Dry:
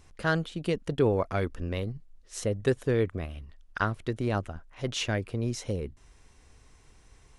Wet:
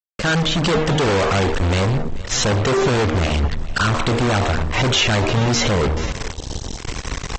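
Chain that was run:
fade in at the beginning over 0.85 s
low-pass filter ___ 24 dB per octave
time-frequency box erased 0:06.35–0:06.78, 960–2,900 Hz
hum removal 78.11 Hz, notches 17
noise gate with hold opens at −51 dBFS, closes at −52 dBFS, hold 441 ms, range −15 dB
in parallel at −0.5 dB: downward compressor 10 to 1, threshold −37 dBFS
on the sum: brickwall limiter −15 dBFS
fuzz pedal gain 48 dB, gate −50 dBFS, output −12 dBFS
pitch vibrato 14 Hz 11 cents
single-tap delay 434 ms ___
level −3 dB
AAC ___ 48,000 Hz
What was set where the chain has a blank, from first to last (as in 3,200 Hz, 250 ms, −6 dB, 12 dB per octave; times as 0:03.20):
7,400 Hz, −18.5 dB, 24 kbit/s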